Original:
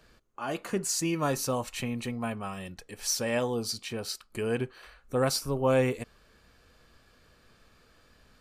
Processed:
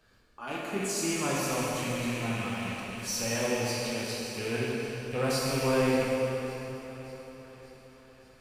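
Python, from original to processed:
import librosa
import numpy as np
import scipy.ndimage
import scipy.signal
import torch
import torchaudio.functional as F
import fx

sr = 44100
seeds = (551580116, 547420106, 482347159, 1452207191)

y = fx.rattle_buzz(x, sr, strikes_db=-46.0, level_db=-25.0)
y = fx.echo_feedback(y, sr, ms=580, feedback_pct=57, wet_db=-17)
y = fx.rev_plate(y, sr, seeds[0], rt60_s=3.5, hf_ratio=0.8, predelay_ms=0, drr_db=-6.0)
y = y * librosa.db_to_amplitude(-7.0)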